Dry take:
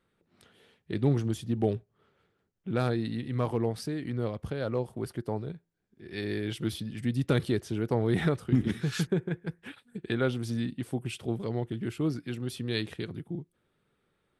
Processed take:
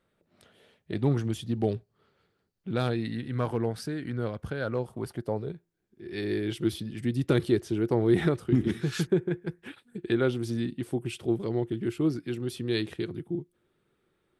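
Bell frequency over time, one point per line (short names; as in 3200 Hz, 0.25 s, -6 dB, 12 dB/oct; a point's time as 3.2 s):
bell +8.5 dB 0.3 oct
0.92 s 610 Hz
1.51 s 4500 Hz
2.69 s 4500 Hz
3.22 s 1500 Hz
4.8 s 1500 Hz
5.54 s 350 Hz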